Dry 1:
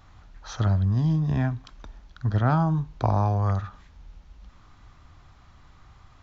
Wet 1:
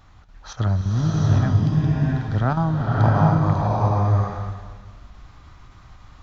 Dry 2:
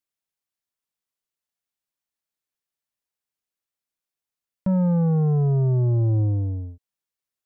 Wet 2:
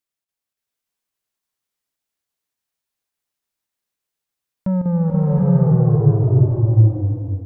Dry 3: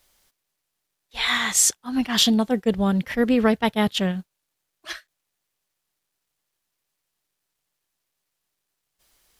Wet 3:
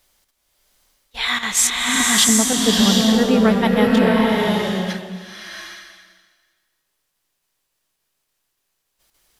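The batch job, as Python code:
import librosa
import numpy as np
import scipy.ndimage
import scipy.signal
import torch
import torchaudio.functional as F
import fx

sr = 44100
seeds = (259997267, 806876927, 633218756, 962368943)

y = fx.chopper(x, sr, hz=3.5, depth_pct=65, duty_pct=85)
y = fx.rev_bloom(y, sr, seeds[0], attack_ms=750, drr_db=-3.5)
y = F.gain(torch.from_numpy(y), 1.5).numpy()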